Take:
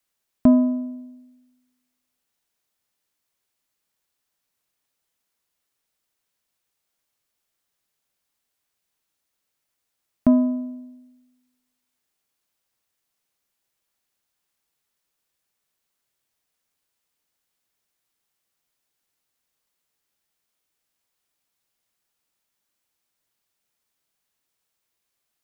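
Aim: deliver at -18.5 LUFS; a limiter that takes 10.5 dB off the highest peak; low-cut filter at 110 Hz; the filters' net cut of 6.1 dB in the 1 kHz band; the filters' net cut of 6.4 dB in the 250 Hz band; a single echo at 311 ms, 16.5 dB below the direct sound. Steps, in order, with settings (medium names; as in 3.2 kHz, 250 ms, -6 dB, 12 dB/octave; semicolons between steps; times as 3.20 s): high-pass 110 Hz; peaking EQ 250 Hz -6 dB; peaking EQ 1 kHz -6.5 dB; peak limiter -19 dBFS; delay 311 ms -16.5 dB; trim +13 dB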